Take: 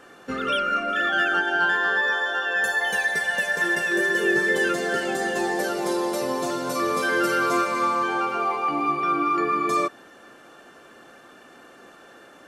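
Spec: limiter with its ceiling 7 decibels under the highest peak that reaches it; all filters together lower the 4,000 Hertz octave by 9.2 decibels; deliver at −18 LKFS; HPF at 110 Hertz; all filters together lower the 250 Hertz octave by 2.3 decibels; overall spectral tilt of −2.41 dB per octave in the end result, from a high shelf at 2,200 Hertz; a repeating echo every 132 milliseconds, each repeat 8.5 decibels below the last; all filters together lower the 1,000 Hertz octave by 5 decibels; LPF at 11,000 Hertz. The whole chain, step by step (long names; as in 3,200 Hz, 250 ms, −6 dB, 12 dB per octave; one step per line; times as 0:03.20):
high-pass filter 110 Hz
low-pass filter 11,000 Hz
parametric band 250 Hz −3 dB
parametric band 1,000 Hz −4.5 dB
high-shelf EQ 2,200 Hz −5.5 dB
parametric band 4,000 Hz −7 dB
brickwall limiter −20.5 dBFS
repeating echo 132 ms, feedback 38%, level −8.5 dB
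level +9.5 dB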